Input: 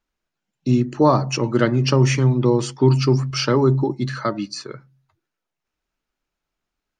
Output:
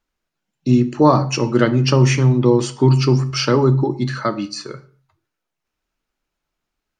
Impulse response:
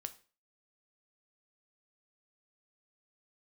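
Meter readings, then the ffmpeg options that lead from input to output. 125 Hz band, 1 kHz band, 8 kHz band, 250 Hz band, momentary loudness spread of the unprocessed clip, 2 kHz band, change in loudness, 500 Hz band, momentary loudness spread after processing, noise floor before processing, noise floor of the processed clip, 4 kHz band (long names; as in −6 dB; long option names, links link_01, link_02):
+2.5 dB, +2.5 dB, +2.5 dB, +3.0 dB, 11 LU, +2.5 dB, +2.5 dB, +2.0 dB, 11 LU, −83 dBFS, −81 dBFS, +2.5 dB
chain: -filter_complex "[0:a]asplit=2[link_01][link_02];[1:a]atrim=start_sample=2205,afade=type=out:start_time=0.27:duration=0.01,atrim=end_sample=12348,asetrate=34839,aresample=44100[link_03];[link_02][link_03]afir=irnorm=-1:irlink=0,volume=8.5dB[link_04];[link_01][link_04]amix=inputs=2:normalize=0,volume=-7.5dB"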